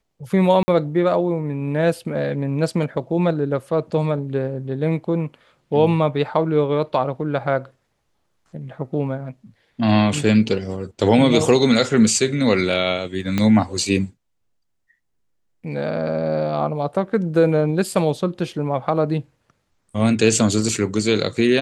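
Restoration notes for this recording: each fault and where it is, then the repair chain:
0:00.63–0:00.68: drop-out 50 ms
0:13.38: click −7 dBFS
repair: click removal
repair the gap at 0:00.63, 50 ms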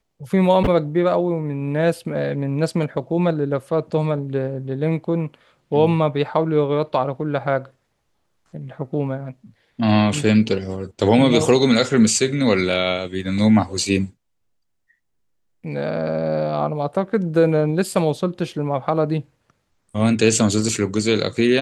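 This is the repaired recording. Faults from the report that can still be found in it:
0:13.38: click

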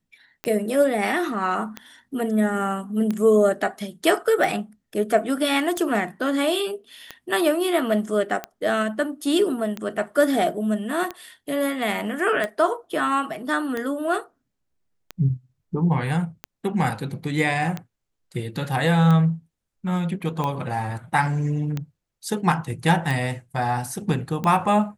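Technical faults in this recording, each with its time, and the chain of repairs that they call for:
scratch tick 45 rpm −14 dBFS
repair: click removal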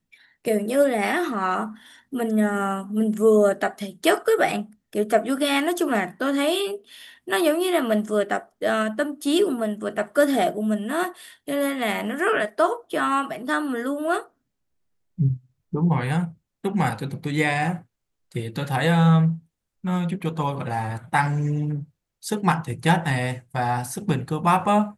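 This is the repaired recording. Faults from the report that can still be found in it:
none of them is left

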